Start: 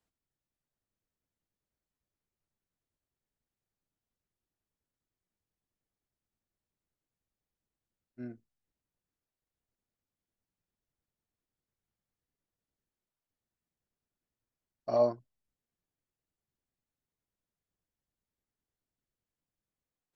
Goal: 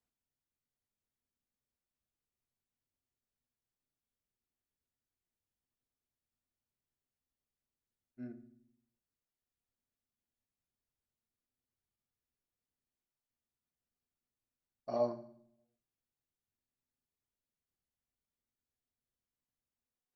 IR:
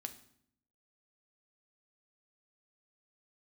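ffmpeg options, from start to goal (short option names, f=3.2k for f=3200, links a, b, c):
-filter_complex "[1:a]atrim=start_sample=2205[a];[0:a][a]afir=irnorm=-1:irlink=0,volume=-2.5dB"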